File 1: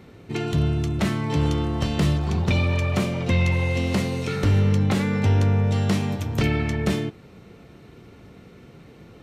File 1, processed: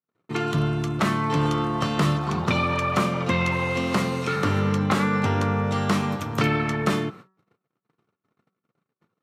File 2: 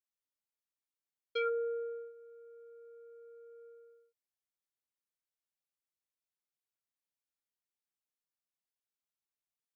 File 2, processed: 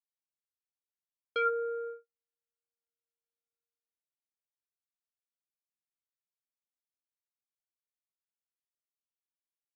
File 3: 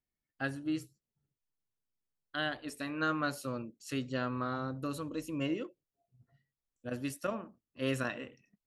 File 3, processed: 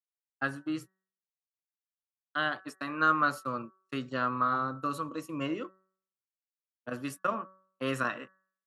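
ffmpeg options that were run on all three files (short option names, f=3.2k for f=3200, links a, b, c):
-af "agate=range=-53dB:threshold=-41dB:ratio=16:detection=peak,highpass=f=120:w=0.5412,highpass=f=120:w=1.3066,equalizer=f=1.2k:t=o:w=0.71:g=12.5,bandreject=f=188.9:t=h:w=4,bandreject=f=377.8:t=h:w=4,bandreject=f=566.7:t=h:w=4,bandreject=f=755.6:t=h:w=4,bandreject=f=944.5:t=h:w=4,bandreject=f=1.1334k:t=h:w=4,bandreject=f=1.3223k:t=h:w=4,bandreject=f=1.5112k:t=h:w=4,bandreject=f=1.7001k:t=h:w=4,bandreject=f=1.889k:t=h:w=4"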